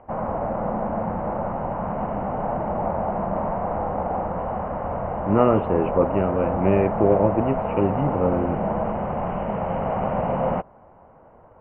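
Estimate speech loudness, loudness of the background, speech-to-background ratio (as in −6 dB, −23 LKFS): −22.5 LKFS, −26.5 LKFS, 4.0 dB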